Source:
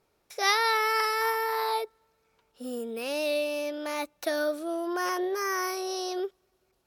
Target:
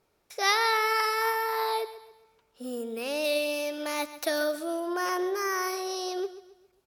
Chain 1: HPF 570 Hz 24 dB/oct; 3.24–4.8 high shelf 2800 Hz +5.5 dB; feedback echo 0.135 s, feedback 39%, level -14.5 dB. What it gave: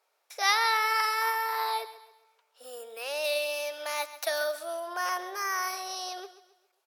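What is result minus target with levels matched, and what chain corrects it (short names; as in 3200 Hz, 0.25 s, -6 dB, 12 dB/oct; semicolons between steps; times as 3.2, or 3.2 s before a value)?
500 Hz band -4.0 dB
3.24–4.8 high shelf 2800 Hz +5.5 dB; feedback echo 0.135 s, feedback 39%, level -14.5 dB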